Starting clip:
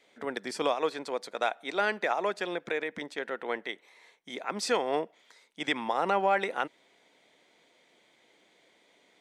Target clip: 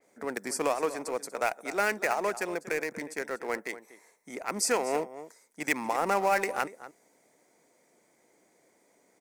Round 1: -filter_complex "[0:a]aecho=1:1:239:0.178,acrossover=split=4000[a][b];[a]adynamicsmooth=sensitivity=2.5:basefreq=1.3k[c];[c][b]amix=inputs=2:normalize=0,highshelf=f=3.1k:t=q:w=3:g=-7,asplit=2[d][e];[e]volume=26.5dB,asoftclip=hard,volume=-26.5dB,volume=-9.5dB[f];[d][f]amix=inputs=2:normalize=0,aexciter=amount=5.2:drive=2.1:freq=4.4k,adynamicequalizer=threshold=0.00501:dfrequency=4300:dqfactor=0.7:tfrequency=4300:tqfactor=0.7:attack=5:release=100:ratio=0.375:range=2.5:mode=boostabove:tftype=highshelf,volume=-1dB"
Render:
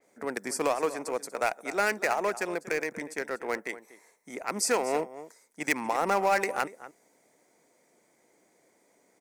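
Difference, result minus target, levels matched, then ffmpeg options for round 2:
overloaded stage: distortion -6 dB
-filter_complex "[0:a]aecho=1:1:239:0.178,acrossover=split=4000[a][b];[a]adynamicsmooth=sensitivity=2.5:basefreq=1.3k[c];[c][b]amix=inputs=2:normalize=0,highshelf=f=3.1k:t=q:w=3:g=-7,asplit=2[d][e];[e]volume=36dB,asoftclip=hard,volume=-36dB,volume=-9.5dB[f];[d][f]amix=inputs=2:normalize=0,aexciter=amount=5.2:drive=2.1:freq=4.4k,adynamicequalizer=threshold=0.00501:dfrequency=4300:dqfactor=0.7:tfrequency=4300:tqfactor=0.7:attack=5:release=100:ratio=0.375:range=2.5:mode=boostabove:tftype=highshelf,volume=-1dB"

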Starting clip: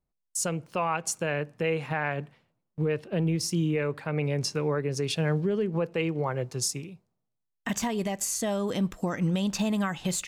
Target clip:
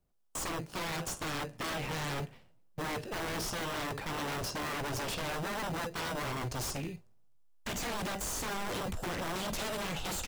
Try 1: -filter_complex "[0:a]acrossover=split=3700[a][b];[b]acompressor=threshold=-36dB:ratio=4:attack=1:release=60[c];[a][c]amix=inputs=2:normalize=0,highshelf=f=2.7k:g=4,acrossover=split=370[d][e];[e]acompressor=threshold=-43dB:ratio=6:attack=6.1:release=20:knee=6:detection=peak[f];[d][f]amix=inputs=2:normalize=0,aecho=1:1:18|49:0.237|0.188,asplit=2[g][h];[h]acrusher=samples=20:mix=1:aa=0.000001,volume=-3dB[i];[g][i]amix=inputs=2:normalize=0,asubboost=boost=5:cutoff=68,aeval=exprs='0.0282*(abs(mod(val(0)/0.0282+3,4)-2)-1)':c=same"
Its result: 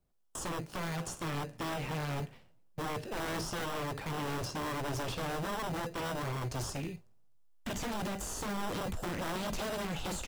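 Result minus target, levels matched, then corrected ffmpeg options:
compressor: peak gain reduction +7.5 dB
-filter_complex "[0:a]acrossover=split=3700[a][b];[b]acompressor=threshold=-36dB:ratio=4:attack=1:release=60[c];[a][c]amix=inputs=2:normalize=0,highshelf=f=2.7k:g=4,acrossover=split=370[d][e];[e]acompressor=threshold=-34dB:ratio=6:attack=6.1:release=20:knee=6:detection=peak[f];[d][f]amix=inputs=2:normalize=0,aecho=1:1:18|49:0.237|0.188,asplit=2[g][h];[h]acrusher=samples=20:mix=1:aa=0.000001,volume=-3dB[i];[g][i]amix=inputs=2:normalize=0,asubboost=boost=5:cutoff=68,aeval=exprs='0.0282*(abs(mod(val(0)/0.0282+3,4)-2)-1)':c=same"

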